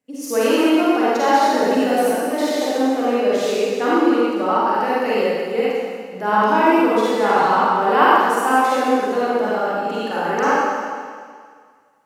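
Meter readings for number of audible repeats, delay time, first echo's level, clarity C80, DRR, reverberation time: no echo audible, no echo audible, no echo audible, −3.0 dB, −9.0 dB, 1.9 s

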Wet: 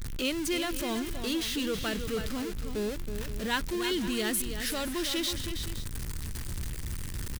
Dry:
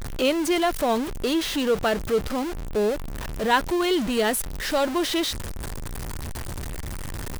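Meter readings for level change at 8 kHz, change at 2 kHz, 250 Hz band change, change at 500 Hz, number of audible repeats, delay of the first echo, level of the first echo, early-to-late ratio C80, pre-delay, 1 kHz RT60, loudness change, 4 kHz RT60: −2.5 dB, −6.0 dB, −6.5 dB, −11.0 dB, 2, 322 ms, −8.5 dB, no reverb audible, no reverb audible, no reverb audible, −7.0 dB, no reverb audible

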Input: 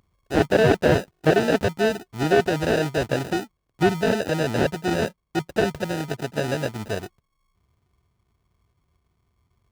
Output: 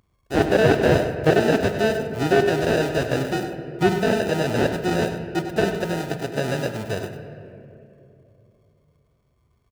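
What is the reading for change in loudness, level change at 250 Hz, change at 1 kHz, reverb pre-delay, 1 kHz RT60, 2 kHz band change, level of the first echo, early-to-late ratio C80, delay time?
+1.0 dB, +1.5 dB, +1.0 dB, 8 ms, 2.1 s, +1.0 dB, −10.5 dB, 7.0 dB, 99 ms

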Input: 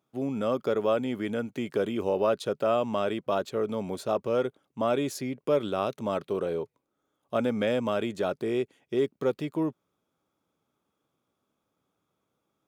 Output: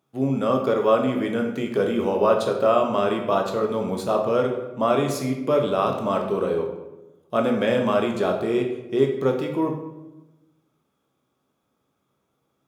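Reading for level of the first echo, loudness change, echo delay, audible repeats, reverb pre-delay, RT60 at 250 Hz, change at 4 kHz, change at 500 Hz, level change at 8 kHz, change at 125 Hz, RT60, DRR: no echo audible, +6.5 dB, no echo audible, no echo audible, 13 ms, 1.3 s, +5.0 dB, +6.0 dB, +5.0 dB, +7.5 dB, 1.0 s, 2.0 dB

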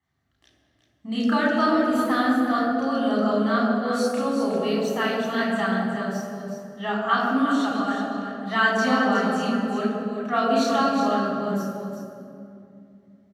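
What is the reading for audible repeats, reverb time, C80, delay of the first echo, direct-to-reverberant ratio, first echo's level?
2, 2.4 s, 0.5 dB, 366 ms, −5.0 dB, −7.5 dB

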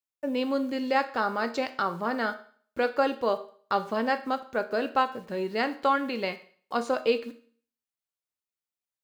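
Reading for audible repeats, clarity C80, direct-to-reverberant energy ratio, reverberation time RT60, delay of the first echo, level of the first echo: no echo audible, 18.0 dB, 9.0 dB, 0.45 s, no echo audible, no echo audible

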